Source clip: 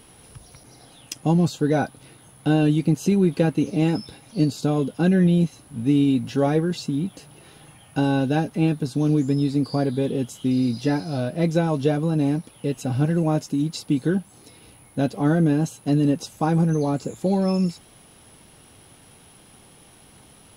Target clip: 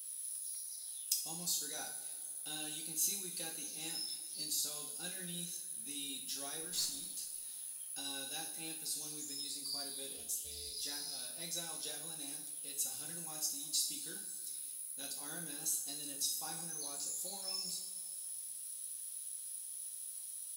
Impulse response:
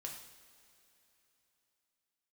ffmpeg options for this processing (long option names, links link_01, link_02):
-filter_complex "[0:a]aderivative,aexciter=amount=1.7:drive=9.1:freq=3700,asettb=1/sr,asplit=3[link_01][link_02][link_03];[link_01]atrim=end=6.564[link_04];[link_02]atrim=start=6.56:end=7.04,asetpts=PTS-STARTPTS,afade=type=in:duration=0.004:curve=qsin,afade=type=out:start_time=0.476:duration=0.004:curve=qsin,aeval=exprs='0.15*(cos(1*acos(clip(val(0)/0.15,-1,1)))-cos(1*PI/2))+0.0075*(cos(6*acos(clip(val(0)/0.15,-1,1)))-cos(6*PI/2))':channel_layout=same[link_05];[link_03]atrim=start=7.036[link_06];[link_04][link_05]acrossfade=duration=0.004:curve1=hsin:curve2=qsin[link_07];[link_07][link_06]acrossfade=duration=0.004:curve1=qsin:curve2=hsin,asplit=3[link_08][link_09][link_10];[link_08]afade=type=out:start_time=10.16:duration=0.02[link_11];[link_09]aeval=exprs='val(0)*sin(2*PI*180*n/s)':channel_layout=same,afade=type=in:start_time=10.16:duration=0.02,afade=type=out:start_time=10.75:duration=0.02[link_12];[link_10]afade=type=in:start_time=10.75:duration=0.02[link_13];[link_11][link_12][link_13]amix=inputs=3:normalize=0,asettb=1/sr,asplit=3[link_14][link_15][link_16];[link_14]atrim=end=14.124[link_17];[link_15]atrim=start=14.12:end=15.03,asetpts=PTS-STARTPTS,afade=type=in:duration=0.004:curve=qsin,afade=type=out:start_time=0.906:duration=0.004:curve=qsin,asuperstop=centerf=660:order=4:qfactor=4.3[link_18];[link_16]atrim=start=15.026[link_19];[link_17][link_18]acrossfade=duration=0.004:curve1=hsin:curve2=qsin[link_20];[link_20][link_19]acrossfade=duration=0.004:curve1=qsin:curve2=hsin[link_21];[1:a]atrim=start_sample=2205,asetrate=61740,aresample=44100[link_22];[link_21][link_22]afir=irnorm=-1:irlink=0"